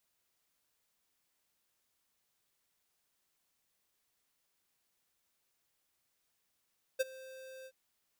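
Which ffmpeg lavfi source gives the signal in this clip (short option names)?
-f lavfi -i "aevalsrc='0.0376*(2*lt(mod(524*t,1),0.5)-1)':d=0.726:s=44100,afade=t=in:d=0.018,afade=t=out:st=0.018:d=0.025:silence=0.0841,afade=t=out:st=0.67:d=0.056"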